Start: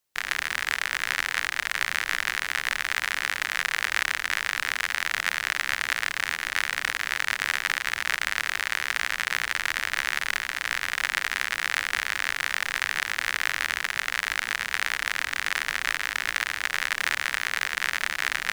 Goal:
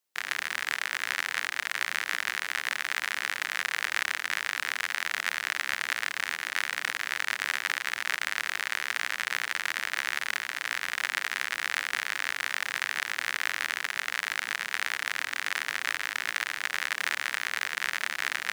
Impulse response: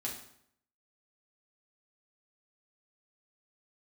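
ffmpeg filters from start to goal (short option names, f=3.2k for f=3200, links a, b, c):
-af "highpass=190,volume=-3.5dB"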